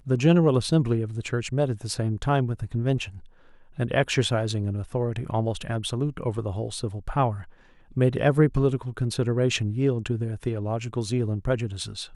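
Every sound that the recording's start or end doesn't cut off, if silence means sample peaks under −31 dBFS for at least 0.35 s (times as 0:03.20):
0:03.79–0:07.41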